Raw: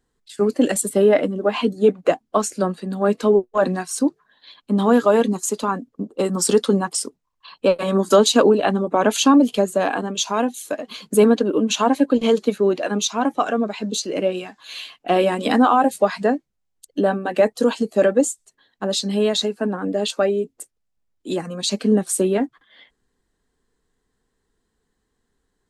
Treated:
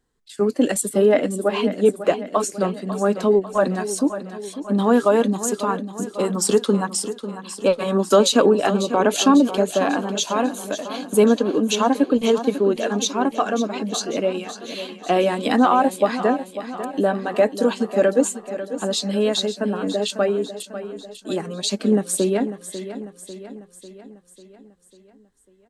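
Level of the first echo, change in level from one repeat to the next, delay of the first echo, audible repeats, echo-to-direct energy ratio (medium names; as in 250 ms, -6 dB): -12.0 dB, -5.0 dB, 546 ms, 5, -10.5 dB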